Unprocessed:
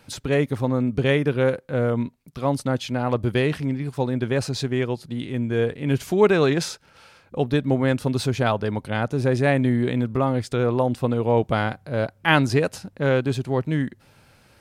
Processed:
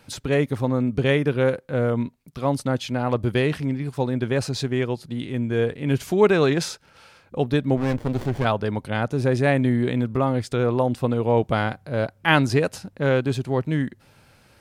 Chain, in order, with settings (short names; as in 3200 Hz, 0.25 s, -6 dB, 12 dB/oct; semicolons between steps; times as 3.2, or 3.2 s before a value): 7.77–8.45 running maximum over 33 samples